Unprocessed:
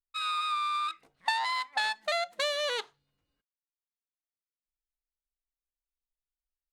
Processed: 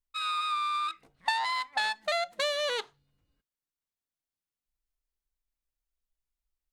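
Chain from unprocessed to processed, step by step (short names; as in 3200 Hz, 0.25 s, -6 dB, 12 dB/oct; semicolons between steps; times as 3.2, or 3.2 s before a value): low shelf 220 Hz +9.5 dB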